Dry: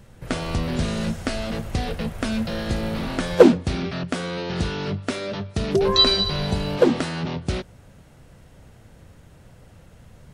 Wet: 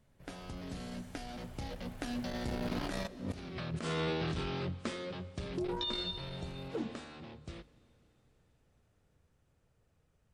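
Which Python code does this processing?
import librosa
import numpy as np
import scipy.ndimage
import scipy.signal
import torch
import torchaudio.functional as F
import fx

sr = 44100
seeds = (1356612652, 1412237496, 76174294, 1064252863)

y = fx.doppler_pass(x, sr, speed_mps=32, closest_m=5.6, pass_at_s=3.45)
y = fx.hum_notches(y, sr, base_hz=50, count=5)
y = fx.over_compress(y, sr, threshold_db=-39.0, ratio=-1.0)
y = fx.rev_schroeder(y, sr, rt60_s=3.6, comb_ms=33, drr_db=19.0)
y = fx.transformer_sat(y, sr, knee_hz=240.0)
y = y * librosa.db_to_amplitude(1.0)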